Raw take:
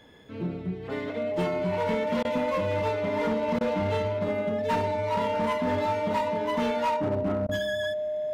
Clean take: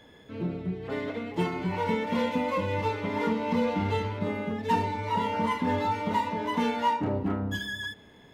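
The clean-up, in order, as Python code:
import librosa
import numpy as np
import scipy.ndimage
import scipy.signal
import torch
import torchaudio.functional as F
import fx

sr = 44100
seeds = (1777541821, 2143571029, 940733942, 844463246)

y = fx.fix_declip(x, sr, threshold_db=-21.5)
y = fx.notch(y, sr, hz=610.0, q=30.0)
y = fx.fix_interpolate(y, sr, at_s=(2.23, 3.59, 7.47), length_ms=17.0)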